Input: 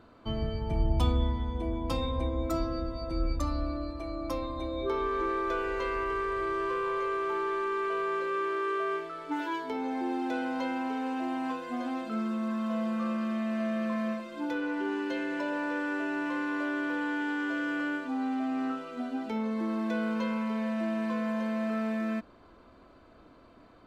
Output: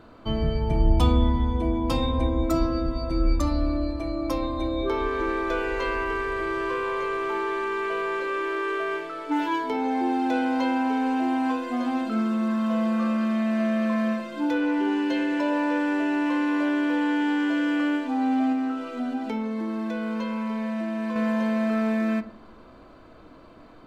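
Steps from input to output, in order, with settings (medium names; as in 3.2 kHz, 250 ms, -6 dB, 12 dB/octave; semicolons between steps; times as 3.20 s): 18.52–21.16 s: compression, threshold -33 dBFS, peak gain reduction 6.5 dB; reverberation RT60 0.45 s, pre-delay 6 ms, DRR 9 dB; trim +6 dB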